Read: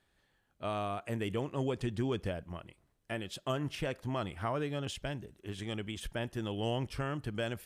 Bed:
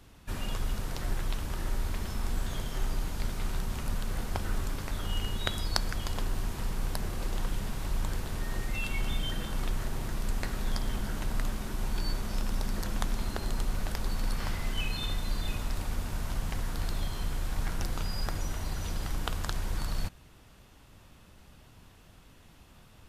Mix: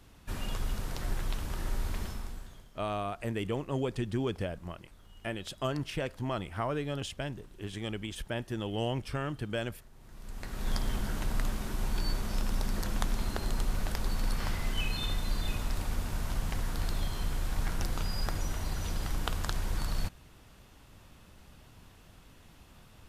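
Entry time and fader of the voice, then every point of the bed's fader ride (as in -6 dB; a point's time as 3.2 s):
2.15 s, +1.5 dB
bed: 2.04 s -1.5 dB
2.74 s -23 dB
9.93 s -23 dB
10.71 s 0 dB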